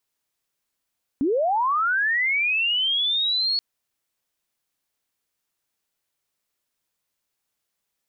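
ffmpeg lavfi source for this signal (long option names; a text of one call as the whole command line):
ffmpeg -f lavfi -i "aevalsrc='pow(10,(-18.5-1.5*t/2.38)/20)*sin(2*PI*(250*t+4150*t*t/(2*2.38)))':duration=2.38:sample_rate=44100" out.wav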